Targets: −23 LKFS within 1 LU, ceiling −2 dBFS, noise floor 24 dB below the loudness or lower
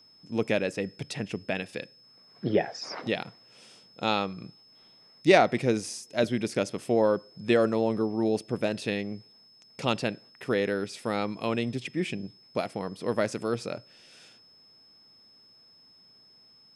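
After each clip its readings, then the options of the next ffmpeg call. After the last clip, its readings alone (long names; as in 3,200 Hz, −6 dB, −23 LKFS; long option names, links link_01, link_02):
interfering tone 5,200 Hz; level of the tone −55 dBFS; integrated loudness −29.0 LKFS; sample peak −5.5 dBFS; target loudness −23.0 LKFS
→ -af "bandreject=frequency=5200:width=30"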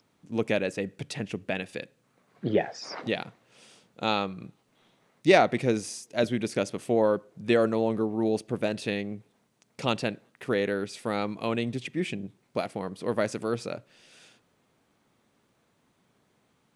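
interfering tone none found; integrated loudness −29.0 LKFS; sample peak −5.0 dBFS; target loudness −23.0 LKFS
→ -af "volume=6dB,alimiter=limit=-2dB:level=0:latency=1"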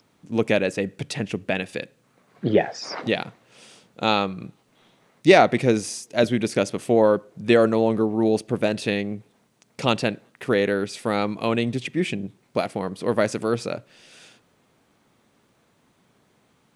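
integrated loudness −23.0 LKFS; sample peak −2.0 dBFS; background noise floor −64 dBFS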